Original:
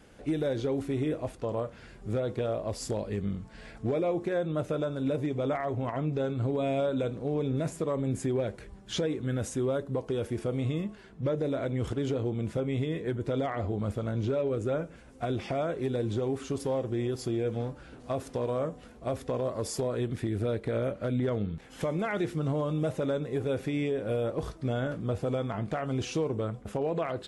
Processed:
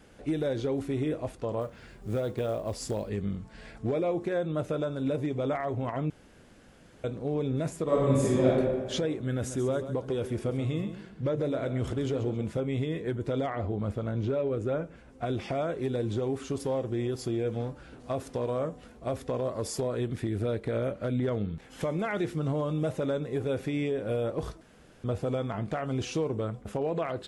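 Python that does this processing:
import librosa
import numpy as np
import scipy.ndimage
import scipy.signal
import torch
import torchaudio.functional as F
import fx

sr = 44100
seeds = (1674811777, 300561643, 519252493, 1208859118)

y = fx.quant_float(x, sr, bits=4, at=(1.6, 3.08), fade=0.02)
y = fx.reverb_throw(y, sr, start_s=7.83, length_s=0.64, rt60_s=1.6, drr_db=-7.0)
y = fx.echo_feedback(y, sr, ms=135, feedback_pct=32, wet_db=-11, at=(9.29, 12.49))
y = fx.high_shelf(y, sr, hz=5200.0, db=-9.0, at=(13.49, 15.26))
y = fx.edit(y, sr, fx.room_tone_fill(start_s=6.1, length_s=0.94),
    fx.room_tone_fill(start_s=24.61, length_s=0.43), tone=tone)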